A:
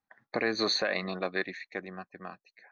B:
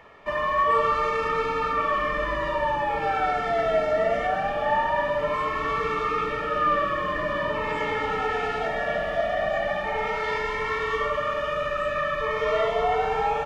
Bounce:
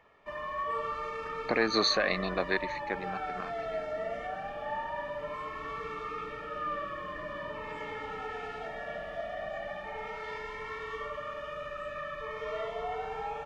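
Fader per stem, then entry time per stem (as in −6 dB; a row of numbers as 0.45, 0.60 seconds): +1.5, −12.5 decibels; 1.15, 0.00 seconds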